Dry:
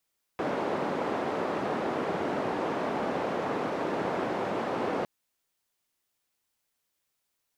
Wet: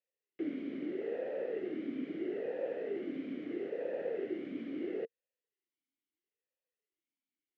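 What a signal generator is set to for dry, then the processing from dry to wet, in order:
noise band 230–700 Hz, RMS -30.5 dBFS 4.66 s
tilt shelf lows +4 dB; talking filter e-i 0.76 Hz

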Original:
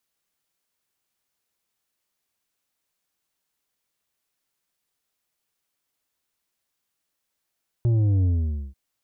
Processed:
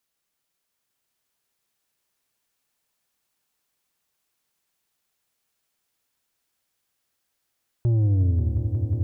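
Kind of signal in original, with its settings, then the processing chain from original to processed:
sub drop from 120 Hz, over 0.89 s, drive 7 dB, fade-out 0.50 s, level -18 dB
echo with a slow build-up 180 ms, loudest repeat 5, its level -9.5 dB

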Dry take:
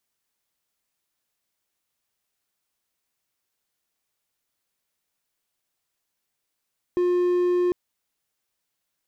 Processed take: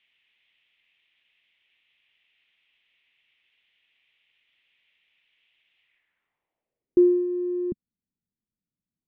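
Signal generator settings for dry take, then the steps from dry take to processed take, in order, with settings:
tone triangle 356 Hz -16.5 dBFS 0.75 s
low-pass sweep 2.8 kHz -> 210 Hz, 5.80–7.27 s; high-order bell 2.6 kHz +14.5 dB 1.2 oct

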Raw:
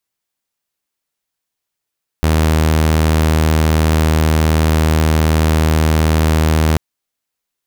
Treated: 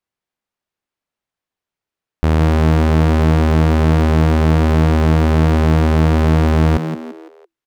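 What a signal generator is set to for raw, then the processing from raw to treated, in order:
tone saw 78.7 Hz -8 dBFS 4.54 s
low-pass 1.8 kHz 6 dB/octave; on a send: frequency-shifting echo 169 ms, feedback 40%, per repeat +82 Hz, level -8.5 dB

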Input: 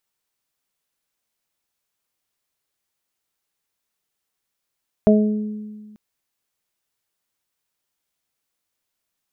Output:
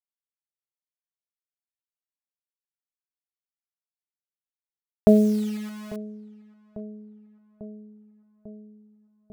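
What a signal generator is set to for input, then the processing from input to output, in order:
additive tone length 0.89 s, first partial 212 Hz, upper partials -4/-2 dB, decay 1.69 s, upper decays 0.98/0.44 s, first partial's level -10.5 dB
bit crusher 7-bit; filtered feedback delay 846 ms, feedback 75%, low-pass 1 kHz, level -18.5 dB

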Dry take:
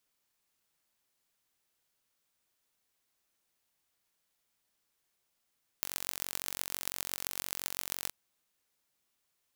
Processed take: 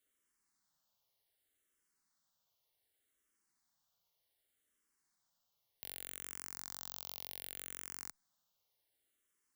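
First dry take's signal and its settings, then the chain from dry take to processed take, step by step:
pulse train 45.9 per s, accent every 6, -5 dBFS 2.27 s
band-stop 2.5 kHz, Q 7.4; peak limiter -15 dBFS; barber-pole phaser -0.66 Hz

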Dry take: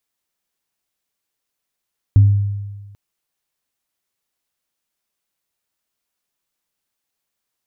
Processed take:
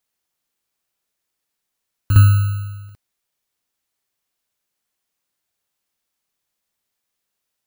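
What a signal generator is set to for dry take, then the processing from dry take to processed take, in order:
sine partials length 0.79 s, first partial 101 Hz, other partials 262 Hz, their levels -20 dB, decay 1.36 s, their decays 0.48 s, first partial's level -4.5 dB
bit-reversed sample order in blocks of 32 samples; reverse echo 58 ms -6 dB

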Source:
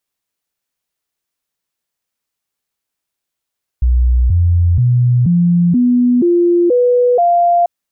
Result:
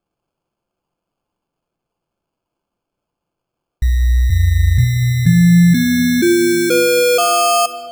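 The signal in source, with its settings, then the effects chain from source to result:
stepped sine 61.4 Hz up, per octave 2, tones 8, 0.48 s, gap 0.00 s -8 dBFS
sample-and-hold 23×; simulated room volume 2500 m³, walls mixed, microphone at 0.79 m; dynamic bell 680 Hz, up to -5 dB, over -23 dBFS, Q 0.72

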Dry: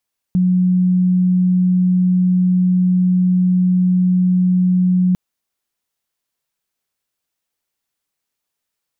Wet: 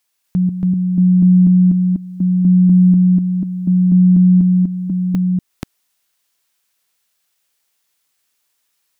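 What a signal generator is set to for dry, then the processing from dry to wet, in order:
tone sine 182 Hz -11 dBFS 4.80 s
chunks repeated in reverse 245 ms, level -1.5 dB; tape noise reduction on one side only encoder only

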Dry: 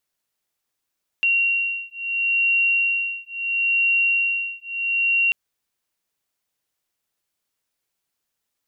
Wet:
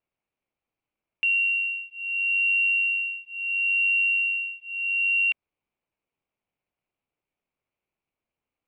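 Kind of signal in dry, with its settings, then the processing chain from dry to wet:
beating tones 2.75 kHz, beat 0.74 Hz, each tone -21.5 dBFS 4.09 s
median filter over 25 samples; resonant low-pass 2.9 kHz, resonance Q 1.6; peaking EQ 2.3 kHz +6.5 dB 0.29 oct

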